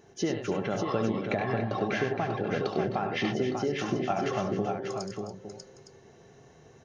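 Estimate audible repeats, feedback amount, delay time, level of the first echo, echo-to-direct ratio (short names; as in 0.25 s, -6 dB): 4, no steady repeat, 71 ms, -8.5 dB, -1.5 dB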